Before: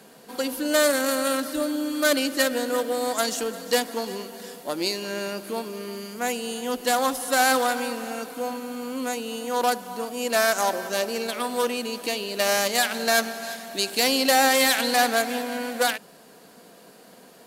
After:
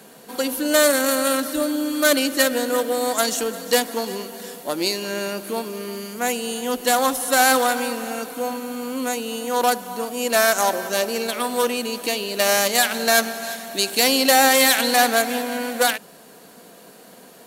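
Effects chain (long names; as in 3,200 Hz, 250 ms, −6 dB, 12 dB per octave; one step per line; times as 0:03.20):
high-shelf EQ 9,500 Hz +5 dB
notch filter 4,900 Hz, Q 15
level +3.5 dB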